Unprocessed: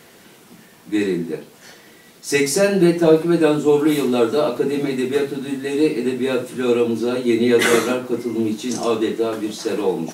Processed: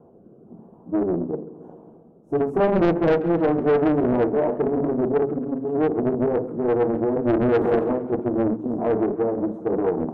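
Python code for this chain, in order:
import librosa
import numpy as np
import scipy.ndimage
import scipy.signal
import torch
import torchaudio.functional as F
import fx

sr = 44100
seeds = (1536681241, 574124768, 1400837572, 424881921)

y = fx.rotary_switch(x, sr, hz=1.0, then_hz=7.0, switch_at_s=7.85)
y = scipy.signal.sosfilt(scipy.signal.cheby2(4, 40, 1800.0, 'lowpass', fs=sr, output='sos'), y)
y = 10.0 ** (-15.5 / 20.0) * np.tanh(y / 10.0 ** (-15.5 / 20.0))
y = fx.echo_feedback(y, sr, ms=135, feedback_pct=58, wet_db=-15)
y = fx.doppler_dist(y, sr, depth_ms=0.7)
y = F.gain(torch.from_numpy(y), 2.0).numpy()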